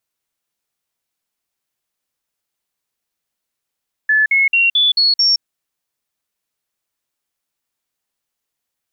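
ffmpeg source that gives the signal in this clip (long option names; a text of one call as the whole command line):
ffmpeg -f lavfi -i "aevalsrc='0.316*clip(min(mod(t,0.22),0.17-mod(t,0.22))/0.005,0,1)*sin(2*PI*1730*pow(2,floor(t/0.22)/3)*mod(t,0.22))':duration=1.32:sample_rate=44100" out.wav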